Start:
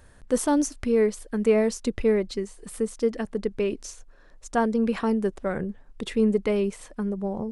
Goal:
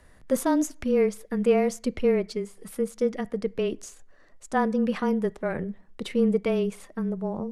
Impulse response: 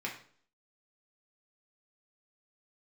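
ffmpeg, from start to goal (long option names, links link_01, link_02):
-filter_complex "[0:a]highshelf=frequency=7500:gain=-4,asetrate=48091,aresample=44100,atempo=0.917004,afreqshift=-21,asplit=2[link_01][link_02];[1:a]atrim=start_sample=2205,asetrate=40572,aresample=44100[link_03];[link_02][link_03]afir=irnorm=-1:irlink=0,volume=-21.5dB[link_04];[link_01][link_04]amix=inputs=2:normalize=0,volume=-1.5dB"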